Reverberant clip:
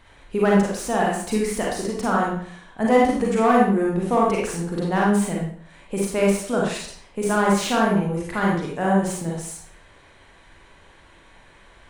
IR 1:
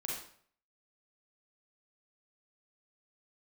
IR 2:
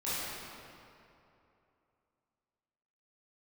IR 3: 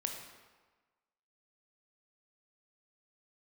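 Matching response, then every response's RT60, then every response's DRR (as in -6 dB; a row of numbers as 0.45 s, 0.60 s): 1; 0.55 s, 2.8 s, 1.3 s; -3.5 dB, -12.5 dB, 2.5 dB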